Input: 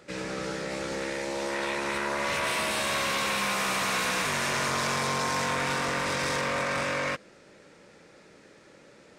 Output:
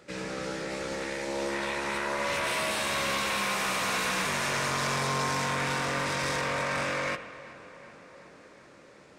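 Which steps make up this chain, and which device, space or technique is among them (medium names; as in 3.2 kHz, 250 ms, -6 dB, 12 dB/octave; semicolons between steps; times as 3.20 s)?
dub delay into a spring reverb (filtered feedback delay 378 ms, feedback 73%, low-pass 3.8 kHz, level -18 dB; spring tank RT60 1.3 s, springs 58 ms, chirp 55 ms, DRR 11 dB); trim -1.5 dB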